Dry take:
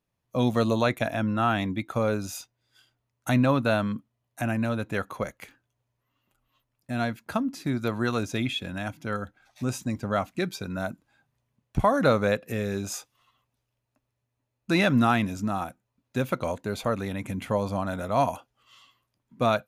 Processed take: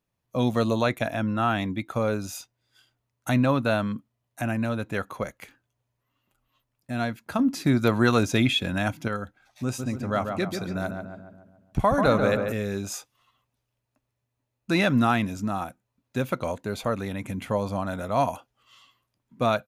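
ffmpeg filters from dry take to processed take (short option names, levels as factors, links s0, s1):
-filter_complex "[0:a]asettb=1/sr,asplit=3[s0][s1][s2];[s0]atrim=end=7.394[s3];[s1]atrim=start=7.39:end=9.08,asetpts=PTS-STARTPTS,afade=t=in:d=0.004:c=qsin,afade=t=out:st=1.686:d=0.004:c=qsin,acontrast=68[s4];[s2]atrim=start=9.076[s5];[s3][s4]acrossfade=d=0.004:c1=hsin:c2=qsin[s6];[s6][s5]acrossfade=d=0.004:c1=qsin:c2=hsin,asplit=3[s7][s8][s9];[s7]afade=t=out:st=9.78:d=0.02[s10];[s8]asplit=2[s11][s12];[s12]adelay=141,lowpass=f=1900:p=1,volume=0.562,asplit=2[s13][s14];[s14]adelay=141,lowpass=f=1900:p=1,volume=0.54,asplit=2[s15][s16];[s16]adelay=141,lowpass=f=1900:p=1,volume=0.54,asplit=2[s17][s18];[s18]adelay=141,lowpass=f=1900:p=1,volume=0.54,asplit=2[s19][s20];[s20]adelay=141,lowpass=f=1900:p=1,volume=0.54,asplit=2[s21][s22];[s22]adelay=141,lowpass=f=1900:p=1,volume=0.54,asplit=2[s23][s24];[s24]adelay=141,lowpass=f=1900:p=1,volume=0.54[s25];[s11][s13][s15][s17][s19][s21][s23][s25]amix=inputs=8:normalize=0,afade=t=in:st=9.78:d=0.02,afade=t=out:st=12.51:d=0.02[s26];[s9]afade=t=in:st=12.51:d=0.02[s27];[s10][s26][s27]amix=inputs=3:normalize=0"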